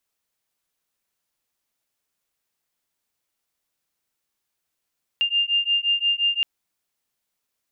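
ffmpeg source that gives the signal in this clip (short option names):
-f lavfi -i "aevalsrc='0.0794*(sin(2*PI*2800*t)+sin(2*PI*2805.7*t))':d=1.22:s=44100"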